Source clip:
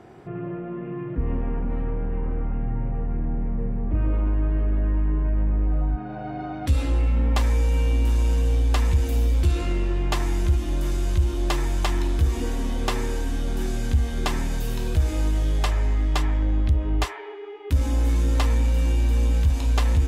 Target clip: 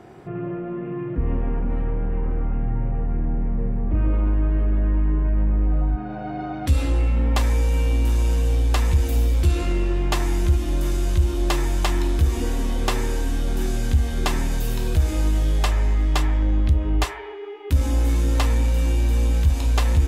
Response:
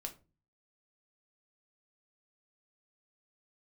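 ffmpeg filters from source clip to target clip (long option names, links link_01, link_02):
-filter_complex "[0:a]asplit=2[link_01][link_02];[1:a]atrim=start_sample=2205,highshelf=frequency=6400:gain=11[link_03];[link_02][link_03]afir=irnorm=-1:irlink=0,volume=-7.5dB[link_04];[link_01][link_04]amix=inputs=2:normalize=0"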